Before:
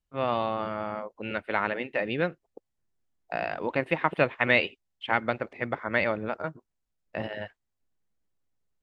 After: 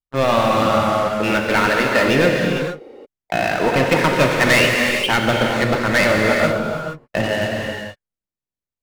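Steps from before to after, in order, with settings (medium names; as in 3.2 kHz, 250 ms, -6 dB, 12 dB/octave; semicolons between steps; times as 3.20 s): dynamic bell 740 Hz, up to -3 dB, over -37 dBFS, Q 0.84; waveshaping leveller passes 5; gated-style reverb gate 490 ms flat, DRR 0 dB; trim -2 dB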